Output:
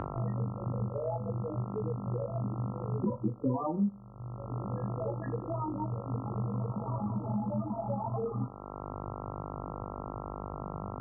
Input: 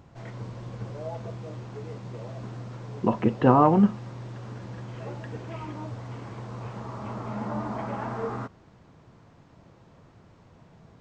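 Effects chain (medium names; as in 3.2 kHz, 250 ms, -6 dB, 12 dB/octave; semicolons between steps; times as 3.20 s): 3.68–6.14 s: bass shelf 90 Hz -9.5 dB; loudest bins only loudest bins 8; reverberation RT60 0.50 s, pre-delay 8 ms, DRR 2.5 dB; reverb removal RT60 1.3 s; mains buzz 50 Hz, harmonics 27, -51 dBFS -1 dB/octave; three bands compressed up and down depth 100%; trim +1 dB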